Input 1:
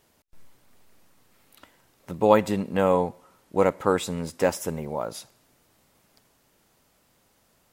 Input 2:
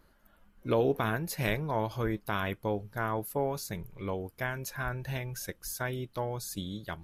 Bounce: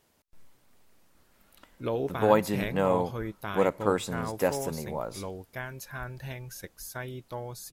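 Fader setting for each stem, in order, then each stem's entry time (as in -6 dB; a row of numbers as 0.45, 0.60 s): -4.0, -3.5 dB; 0.00, 1.15 s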